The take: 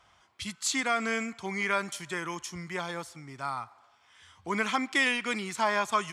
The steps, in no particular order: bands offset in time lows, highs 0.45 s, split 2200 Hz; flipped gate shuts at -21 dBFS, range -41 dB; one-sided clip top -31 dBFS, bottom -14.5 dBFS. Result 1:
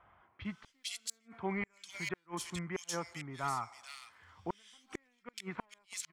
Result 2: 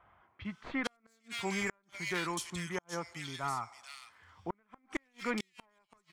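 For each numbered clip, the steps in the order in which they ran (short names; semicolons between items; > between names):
one-sided clip > flipped gate > bands offset in time; one-sided clip > bands offset in time > flipped gate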